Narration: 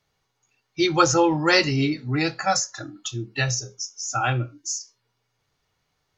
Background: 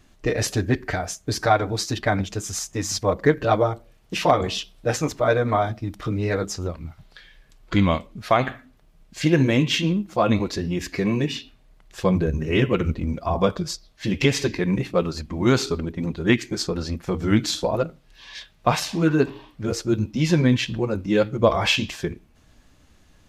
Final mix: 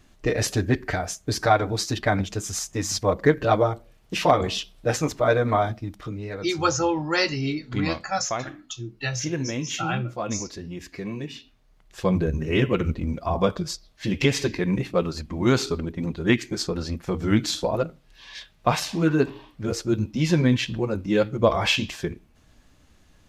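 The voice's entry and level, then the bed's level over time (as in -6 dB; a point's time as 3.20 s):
5.65 s, -4.5 dB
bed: 5.67 s -0.5 dB
6.28 s -10 dB
11.30 s -10 dB
12.15 s -1.5 dB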